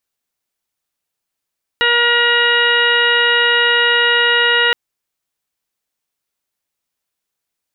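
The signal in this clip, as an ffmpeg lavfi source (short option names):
-f lavfi -i "aevalsrc='0.1*sin(2*PI*476*t)+0.0708*sin(2*PI*952*t)+0.141*sin(2*PI*1428*t)+0.178*sin(2*PI*1904*t)+0.0251*sin(2*PI*2380*t)+0.158*sin(2*PI*2856*t)+0.0168*sin(2*PI*3332*t)+0.0708*sin(2*PI*3808*t)':d=2.92:s=44100"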